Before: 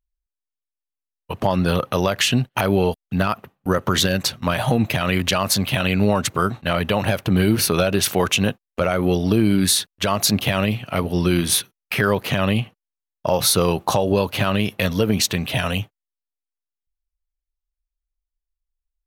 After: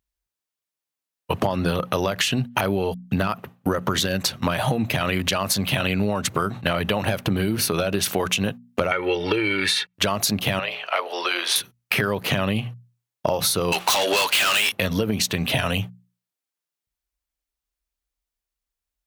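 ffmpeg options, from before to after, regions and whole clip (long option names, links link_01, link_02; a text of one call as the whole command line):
ffmpeg -i in.wav -filter_complex "[0:a]asettb=1/sr,asplit=3[link_01][link_02][link_03];[link_01]atrim=end=8.914[link_04];[link_02]atrim=start=8.91:end=9.94,asetpts=PTS-STARTPTS,afade=type=in:duration=0.004:curve=qsin,afade=type=out:start_time=1.026:duration=0.004:curve=qsin,lowpass=frequency=2200:width_type=q:width=2.4,aemphasis=mode=production:type=riaa,aecho=1:1:2.2:0.9,atrim=end_sample=45423[link_05];[link_03]atrim=start=9.936[link_06];[link_04][link_05]acrossfade=duration=0.004:curve1=hsin:curve2=qsin[link_07];[link_07][link_06]acrossfade=duration=0.004:curve1=qsin:curve2=hsin,asettb=1/sr,asplit=3[link_08][link_09][link_10];[link_08]atrim=end=10.594[link_11];[link_09]atrim=start=10.59:end=11.56,asetpts=PTS-STARTPTS,afade=type=in:duration=0.004:curve=qsin,afade=type=out:start_time=0.966:duration=0.004:curve=qsin,highpass=frequency=420:width=0.5412,highpass=frequency=420:width=1.3066,acrossover=split=560 5200:gain=0.2 1 0.126[link_12][link_13][link_14];[link_12][link_13][link_14]amix=inputs=3:normalize=0,bandreject=frequency=60:width_type=h:width=6,bandreject=frequency=120:width_type=h:width=6,bandreject=frequency=180:width_type=h:width=6,bandreject=frequency=240:width_type=h:width=6,bandreject=frequency=300:width_type=h:width=6,bandreject=frequency=360:width_type=h:width=6,bandreject=frequency=420:width_type=h:width=6,bandreject=frequency=480:width_type=h:width=6,bandreject=frequency=540:width_type=h:width=6,bandreject=frequency=600:width_type=h:width=6[link_15];[link_10]atrim=start=11.556[link_16];[link_11][link_15]acrossfade=duration=0.004:curve1=hsin:curve2=qsin[link_17];[link_17][link_16]acrossfade=duration=0.004:curve1=qsin:curve2=hsin,asettb=1/sr,asplit=3[link_18][link_19][link_20];[link_18]atrim=end=13.724[link_21];[link_19]atrim=start=13.72:end=14.72,asetpts=PTS-STARTPTS,afade=type=in:duration=0.004:curve=qsin,afade=type=out:start_time=0.996:duration=0.004:curve=qsin,bandpass=frequency=3300:width_type=q:width=0.66,asplit=2[link_22][link_23];[link_23]highpass=frequency=720:poles=1,volume=30dB,asoftclip=type=tanh:threshold=-8.5dB[link_24];[link_22][link_24]amix=inputs=2:normalize=0,lowpass=frequency=2800:poles=1,volume=-6dB,aemphasis=mode=production:type=75kf[link_25];[link_20]atrim=start=14.716[link_26];[link_21][link_25]acrossfade=duration=0.004:curve1=hsin:curve2=qsin[link_27];[link_27][link_26]acrossfade=duration=0.004:curve1=qsin:curve2=hsin,highpass=74,bandreject=frequency=60:width_type=h:width=6,bandreject=frequency=120:width_type=h:width=6,bandreject=frequency=180:width_type=h:width=6,bandreject=frequency=240:width_type=h:width=6,acompressor=threshold=-26dB:ratio=12,volume=7.5dB" out.wav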